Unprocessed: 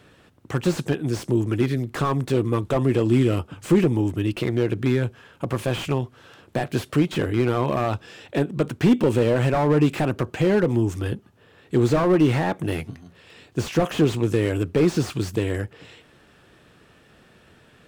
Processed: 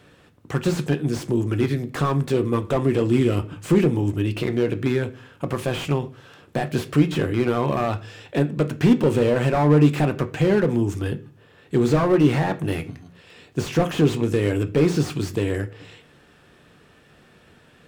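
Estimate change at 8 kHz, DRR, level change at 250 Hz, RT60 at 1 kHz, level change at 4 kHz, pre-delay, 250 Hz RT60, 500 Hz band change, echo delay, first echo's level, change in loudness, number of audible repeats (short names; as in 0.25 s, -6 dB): 0.0 dB, 9.0 dB, +1.0 dB, 0.40 s, 0.0 dB, 3 ms, 0.60 s, +0.5 dB, none, none, +1.0 dB, none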